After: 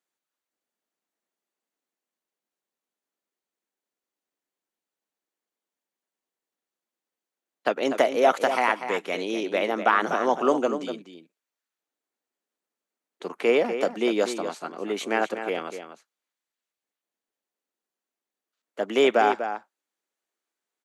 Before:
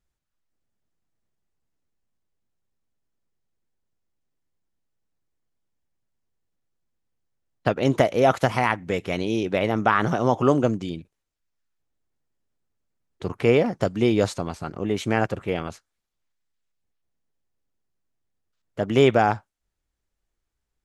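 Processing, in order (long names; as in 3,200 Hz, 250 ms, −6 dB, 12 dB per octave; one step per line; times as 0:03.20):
Bessel high-pass filter 370 Hz, order 8
notch filter 5,200 Hz, Q 15
slap from a distant wall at 42 metres, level −9 dB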